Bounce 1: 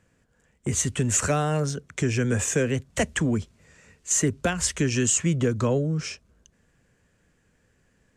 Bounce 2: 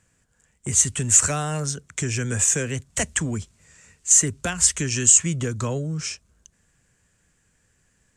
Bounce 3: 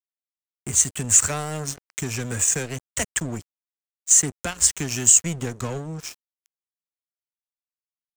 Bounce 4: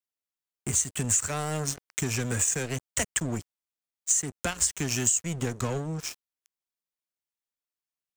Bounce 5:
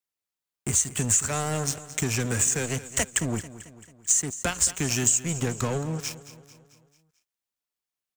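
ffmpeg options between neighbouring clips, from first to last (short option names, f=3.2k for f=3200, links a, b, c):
-af "equalizer=f=250:t=o:w=1:g=-4,equalizer=f=500:t=o:w=1:g=-5,equalizer=f=8k:t=o:w=1:g=10"
-af "aeval=exprs='sgn(val(0))*max(abs(val(0))-0.0282,0)':c=same,volume=1dB"
-af "acompressor=threshold=-22dB:ratio=6"
-af "aecho=1:1:221|442|663|884|1105:0.168|0.0873|0.0454|0.0236|0.0123,volume=2.5dB"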